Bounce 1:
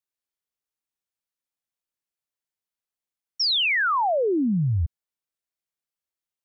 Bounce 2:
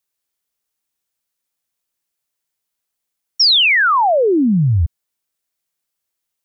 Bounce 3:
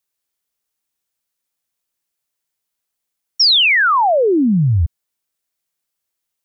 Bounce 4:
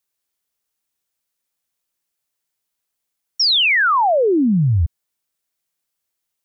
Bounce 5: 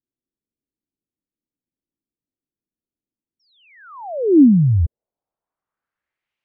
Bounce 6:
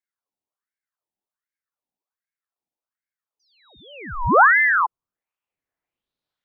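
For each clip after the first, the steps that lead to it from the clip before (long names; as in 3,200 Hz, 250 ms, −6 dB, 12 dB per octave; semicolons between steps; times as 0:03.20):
high-shelf EQ 5,200 Hz +5.5 dB; level +8.5 dB
no processing that can be heard
brickwall limiter −12 dBFS, peak gain reduction 4.5 dB
low-pass filter sweep 290 Hz → 2,500 Hz, 0:04.39–0:06.33
ring modulator whose carrier an LFO sweeps 1,200 Hz, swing 60%, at 1.3 Hz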